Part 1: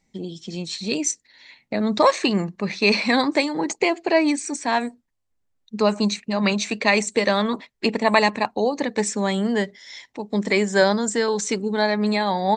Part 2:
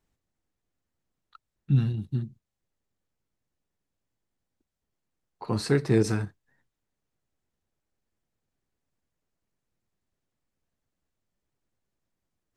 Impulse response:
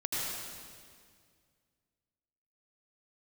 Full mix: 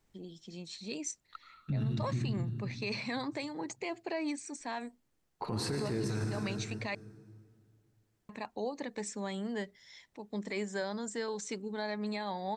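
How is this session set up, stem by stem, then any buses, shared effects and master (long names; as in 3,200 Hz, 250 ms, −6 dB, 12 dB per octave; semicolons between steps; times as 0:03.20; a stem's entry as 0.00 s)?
−15.0 dB, 0.00 s, muted 0:06.95–0:08.29, no send, no processing
+1.5 dB, 0.00 s, send −8 dB, downward compressor, threshold −27 dBFS, peak gain reduction 10 dB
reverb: on, RT60 2.0 s, pre-delay 74 ms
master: brickwall limiter −26 dBFS, peak gain reduction 13.5 dB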